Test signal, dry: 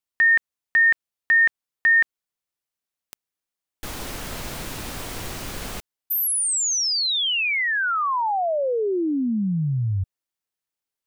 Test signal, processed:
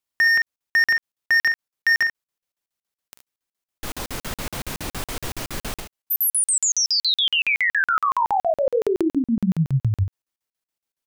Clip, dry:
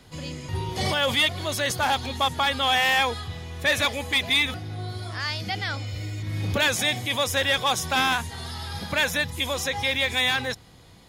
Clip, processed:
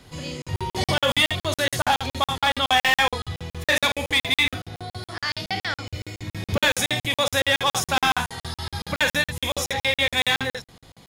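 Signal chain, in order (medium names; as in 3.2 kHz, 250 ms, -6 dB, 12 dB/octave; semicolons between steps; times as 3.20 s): overload inside the chain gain 16 dB; early reflections 43 ms -8.5 dB, 59 ms -16 dB, 73 ms -8.5 dB; crackling interface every 0.14 s, samples 2048, zero, from 0.42 s; trim +2 dB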